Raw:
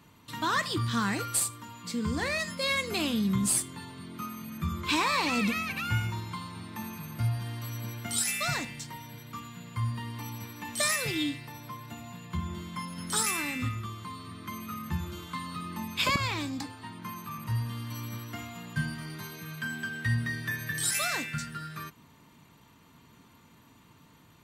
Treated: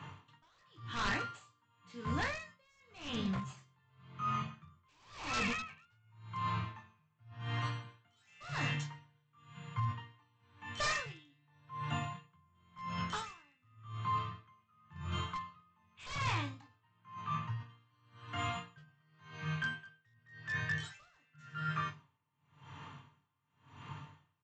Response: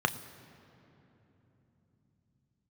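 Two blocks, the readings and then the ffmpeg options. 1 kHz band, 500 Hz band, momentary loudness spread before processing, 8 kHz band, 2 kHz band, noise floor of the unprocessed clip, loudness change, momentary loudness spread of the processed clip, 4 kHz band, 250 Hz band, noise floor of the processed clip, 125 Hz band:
-5.0 dB, -10.0 dB, 14 LU, -20.0 dB, -8.0 dB, -58 dBFS, -8.0 dB, 20 LU, -11.0 dB, -11.5 dB, -75 dBFS, -7.5 dB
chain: -filter_complex "[0:a]asplit=2[s0][s1];[s1]adelay=21,volume=0.531[s2];[s0][s2]amix=inputs=2:normalize=0[s3];[1:a]atrim=start_sample=2205,afade=t=out:st=0.21:d=0.01,atrim=end_sample=9702[s4];[s3][s4]afir=irnorm=-1:irlink=0,asplit=2[s5][s6];[s6]highpass=f=720:p=1,volume=2.51,asoftclip=type=tanh:threshold=0.708[s7];[s5][s7]amix=inputs=2:normalize=0,lowpass=f=4600:p=1,volume=0.501,aresample=16000,aeval=exprs='0.2*(abs(mod(val(0)/0.2+3,4)-2)-1)':c=same,aresample=44100,lowshelf=f=160:t=q:w=1.5:g=7.5,areverse,acompressor=threshold=0.0398:ratio=6,areverse,aeval=exprs='val(0)*pow(10,-37*(0.5-0.5*cos(2*PI*0.92*n/s))/20)':c=same,volume=0.668"

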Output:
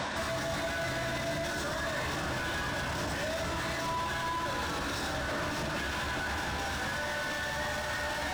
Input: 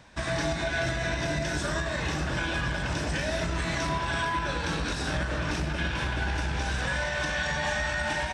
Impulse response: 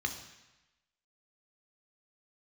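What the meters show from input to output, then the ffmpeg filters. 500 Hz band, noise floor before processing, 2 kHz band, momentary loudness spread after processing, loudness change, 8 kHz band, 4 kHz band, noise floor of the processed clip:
-3.0 dB, -32 dBFS, -4.0 dB, 1 LU, -4.0 dB, -2.0 dB, -2.5 dB, -35 dBFS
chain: -filter_complex "[0:a]asplit=2[s0][s1];[s1]highpass=f=720:p=1,volume=70.8,asoftclip=type=tanh:threshold=0.15[s2];[s0][s2]amix=inputs=2:normalize=0,lowpass=f=2700:p=1,volume=0.501,asplit=2[s3][s4];[1:a]atrim=start_sample=2205[s5];[s4][s5]afir=irnorm=-1:irlink=0,volume=0.398[s6];[s3][s6]amix=inputs=2:normalize=0,alimiter=level_in=1.26:limit=0.0631:level=0:latency=1,volume=0.794"

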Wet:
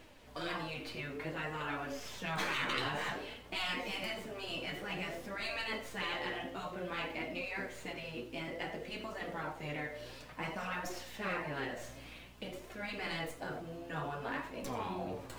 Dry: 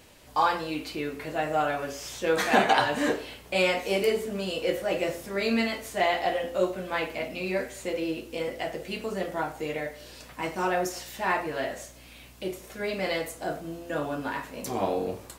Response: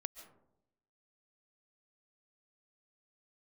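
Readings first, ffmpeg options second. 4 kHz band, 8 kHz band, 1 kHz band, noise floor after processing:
-6.5 dB, -11.5 dB, -12.5 dB, -53 dBFS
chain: -filter_complex "[0:a]acrossover=split=4000[s0][s1];[s1]aeval=exprs='max(val(0),0)':c=same[s2];[s0][s2]amix=inputs=2:normalize=0,highshelf=f=6700:g=-6[s3];[1:a]atrim=start_sample=2205,afade=t=out:st=0.19:d=0.01,atrim=end_sample=8820,asetrate=70560,aresample=44100[s4];[s3][s4]afir=irnorm=-1:irlink=0,areverse,acompressor=mode=upward:threshold=0.00501:ratio=2.5,areverse,afftfilt=real='re*lt(hypot(re,im),0.0562)':imag='im*lt(hypot(re,im),0.0562)':win_size=1024:overlap=0.75,flanger=delay=2.7:depth=5.9:regen=58:speed=0.55:shape=triangular,volume=2.51"

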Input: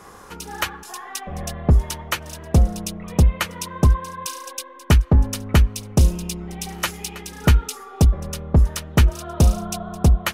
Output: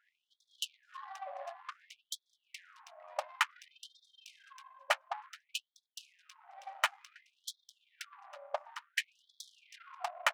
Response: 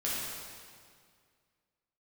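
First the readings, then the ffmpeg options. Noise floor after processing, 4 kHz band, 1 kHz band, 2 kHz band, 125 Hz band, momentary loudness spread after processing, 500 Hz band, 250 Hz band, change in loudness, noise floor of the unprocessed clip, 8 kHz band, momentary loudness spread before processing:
under -85 dBFS, -10.5 dB, -10.0 dB, -8.0 dB, under -40 dB, 21 LU, -16.5 dB, under -40 dB, -18.5 dB, -42 dBFS, -18.0 dB, 13 LU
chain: -af "highpass=f=180:w=0.5412,highpass=f=180:w=1.3066,adynamicsmooth=sensitivity=1.5:basefreq=540,afftfilt=real='re*gte(b*sr/1024,520*pow(3300/520,0.5+0.5*sin(2*PI*0.56*pts/sr)))':imag='im*gte(b*sr/1024,520*pow(3300/520,0.5+0.5*sin(2*PI*0.56*pts/sr)))':win_size=1024:overlap=0.75,volume=0.631"

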